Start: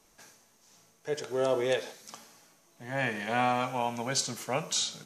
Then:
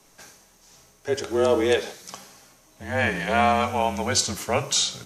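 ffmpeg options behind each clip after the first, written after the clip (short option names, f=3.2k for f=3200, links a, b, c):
-af "afreqshift=-34,volume=7.5dB"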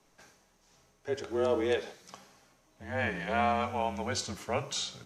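-af "highshelf=f=6k:g=-11.5,volume=-8dB"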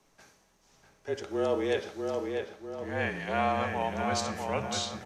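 -filter_complex "[0:a]asplit=2[a][b];[b]adelay=646,lowpass=f=2.8k:p=1,volume=-4dB,asplit=2[c][d];[d]adelay=646,lowpass=f=2.8k:p=1,volume=0.48,asplit=2[e][f];[f]adelay=646,lowpass=f=2.8k:p=1,volume=0.48,asplit=2[g][h];[h]adelay=646,lowpass=f=2.8k:p=1,volume=0.48,asplit=2[i][j];[j]adelay=646,lowpass=f=2.8k:p=1,volume=0.48,asplit=2[k][l];[l]adelay=646,lowpass=f=2.8k:p=1,volume=0.48[m];[a][c][e][g][i][k][m]amix=inputs=7:normalize=0"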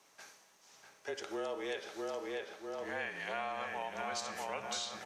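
-af "highpass=f=860:p=1,acompressor=threshold=-42dB:ratio=4,volume=4.5dB"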